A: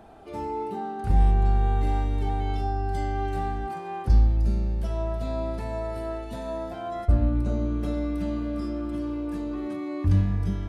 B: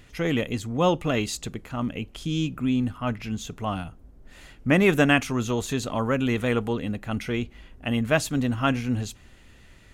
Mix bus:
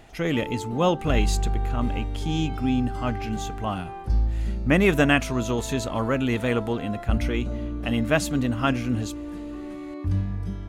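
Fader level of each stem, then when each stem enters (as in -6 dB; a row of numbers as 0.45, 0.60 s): -4.0, 0.0 dB; 0.00, 0.00 s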